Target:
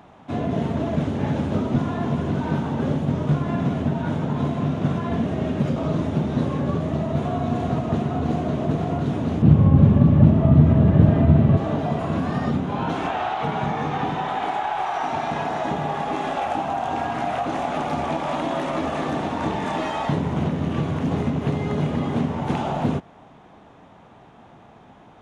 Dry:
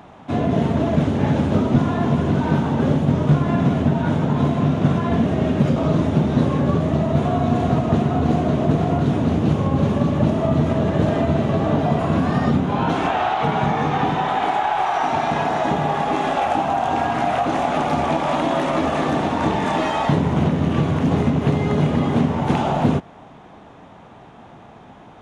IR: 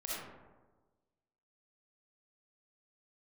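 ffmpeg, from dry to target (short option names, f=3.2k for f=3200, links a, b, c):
-filter_complex "[0:a]asettb=1/sr,asplit=3[a][b][c];[a]atrim=end=9.424[d];[b]atrim=start=9.42:end=11.57,asetpts=PTS-STARTPTS,afade=t=in:d=0.004:c=qsin,afade=t=out:st=2.146:d=0.004:c=qsin,bass=f=250:g=13,treble=f=4k:g=-12[e];[c]atrim=start=11.566[f];[d][e]acrossfade=d=0.004:c1=hsin:c2=qsin[g];[g][f]acrossfade=d=0.004:c1=qsin:c2=hsin,volume=-5dB"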